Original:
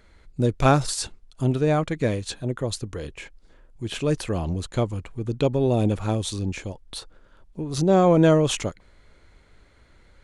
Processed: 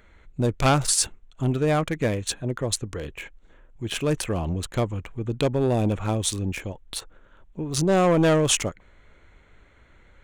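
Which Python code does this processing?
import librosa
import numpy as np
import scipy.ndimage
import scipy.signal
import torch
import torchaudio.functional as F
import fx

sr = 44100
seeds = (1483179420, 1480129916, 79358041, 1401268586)

y = fx.wiener(x, sr, points=9)
y = fx.dynamic_eq(y, sr, hz=4000.0, q=1.5, threshold_db=-47.0, ratio=4.0, max_db=-5)
y = 10.0 ** (-13.5 / 20.0) * np.tanh(y / 10.0 ** (-13.5 / 20.0))
y = fx.high_shelf(y, sr, hz=2100.0, db=11.0)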